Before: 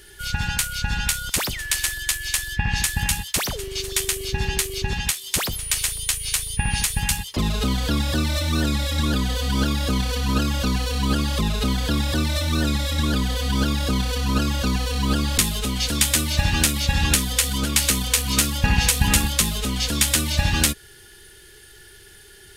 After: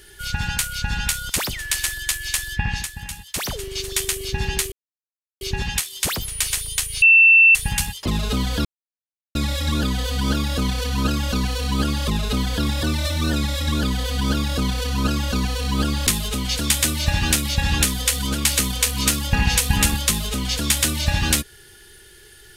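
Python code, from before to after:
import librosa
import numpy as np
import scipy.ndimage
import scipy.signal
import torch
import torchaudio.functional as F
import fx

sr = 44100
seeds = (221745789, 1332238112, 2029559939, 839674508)

y = fx.edit(x, sr, fx.fade_down_up(start_s=2.65, length_s=0.85, db=-10.5, fade_s=0.25),
    fx.insert_silence(at_s=4.72, length_s=0.69),
    fx.bleep(start_s=6.33, length_s=0.53, hz=2680.0, db=-8.0),
    fx.silence(start_s=7.96, length_s=0.7), tone=tone)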